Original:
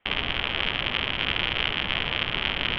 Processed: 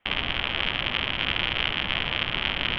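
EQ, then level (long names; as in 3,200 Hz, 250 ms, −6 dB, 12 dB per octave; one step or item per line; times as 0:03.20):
parametric band 430 Hz −3.5 dB 0.32 octaves
0.0 dB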